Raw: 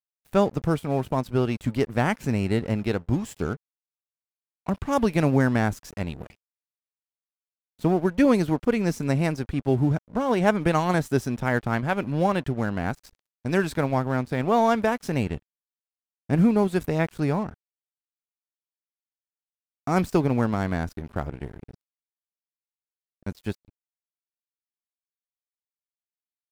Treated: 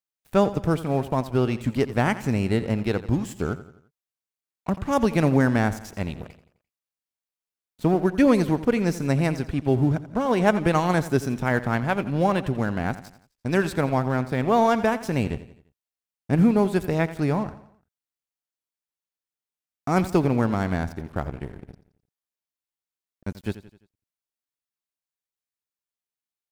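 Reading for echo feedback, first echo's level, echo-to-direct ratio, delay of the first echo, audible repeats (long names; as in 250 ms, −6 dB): 46%, −15.0 dB, −14.0 dB, 86 ms, 3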